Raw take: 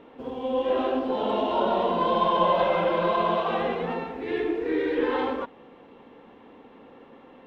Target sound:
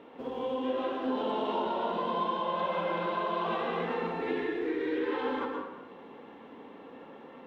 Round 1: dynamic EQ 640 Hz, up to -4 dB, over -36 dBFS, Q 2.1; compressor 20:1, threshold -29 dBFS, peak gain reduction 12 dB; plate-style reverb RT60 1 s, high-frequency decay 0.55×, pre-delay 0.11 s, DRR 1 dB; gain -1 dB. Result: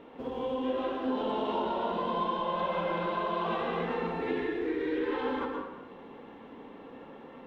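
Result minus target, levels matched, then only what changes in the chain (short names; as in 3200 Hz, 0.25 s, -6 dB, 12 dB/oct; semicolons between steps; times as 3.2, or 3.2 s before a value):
125 Hz band +2.5 dB
add after dynamic EQ: HPF 170 Hz 6 dB/oct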